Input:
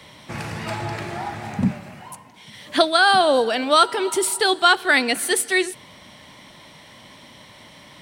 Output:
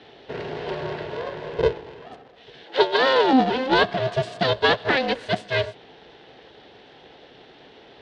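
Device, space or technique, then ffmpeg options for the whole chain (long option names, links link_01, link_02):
ring modulator pedal into a guitar cabinet: -filter_complex "[0:a]aeval=exprs='val(0)*sgn(sin(2*PI*260*n/s))':channel_layout=same,highpass=80,equalizer=frequency=92:width_type=q:width=4:gain=-9,equalizer=frequency=260:width_type=q:width=4:gain=7,equalizer=frequency=440:width_type=q:width=4:gain=6,equalizer=frequency=710:width_type=q:width=4:gain=4,equalizer=frequency=1200:width_type=q:width=4:gain=-10,equalizer=frequency=2300:width_type=q:width=4:gain=-7,lowpass=frequency=3900:width=0.5412,lowpass=frequency=3900:width=1.3066,asettb=1/sr,asplit=3[link_01][link_02][link_03];[link_01]atrim=end=2.644[link_04];[link_02]atrim=start=2.64:end=3.33,asetpts=PTS-STARTPTS,afade=type=in:duration=0.004:curve=qsin,afade=type=out:start_time=0.686:duration=0.004:curve=qsin,highpass=290[link_05];[link_03]atrim=start=3.326[link_06];[link_04][link_05]acrossfade=duration=0.004:curve1=hsin:curve2=qsin[link_07];[link_07][link_06]acrossfade=duration=0.004:curve1=qsin:curve2=hsin,volume=-2dB"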